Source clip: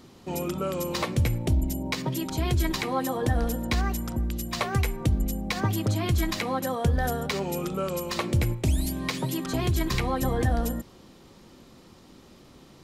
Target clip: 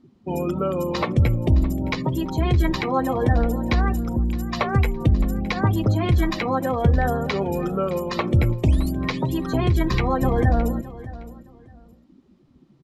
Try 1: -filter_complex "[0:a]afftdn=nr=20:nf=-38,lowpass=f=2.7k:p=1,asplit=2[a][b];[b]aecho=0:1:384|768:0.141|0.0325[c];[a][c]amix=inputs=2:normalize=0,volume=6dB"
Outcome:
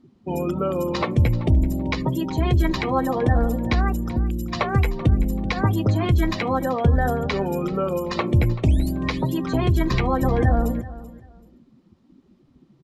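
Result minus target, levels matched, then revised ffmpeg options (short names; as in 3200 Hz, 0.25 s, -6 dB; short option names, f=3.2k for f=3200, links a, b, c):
echo 0.231 s early
-filter_complex "[0:a]afftdn=nr=20:nf=-38,lowpass=f=2.7k:p=1,asplit=2[a][b];[b]aecho=0:1:615|1230:0.141|0.0325[c];[a][c]amix=inputs=2:normalize=0,volume=6dB"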